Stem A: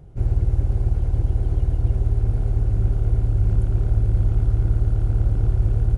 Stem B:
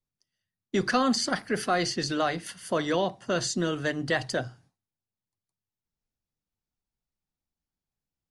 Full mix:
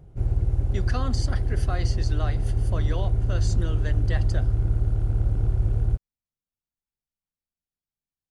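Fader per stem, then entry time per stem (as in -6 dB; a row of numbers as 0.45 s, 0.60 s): -3.5 dB, -8.5 dB; 0.00 s, 0.00 s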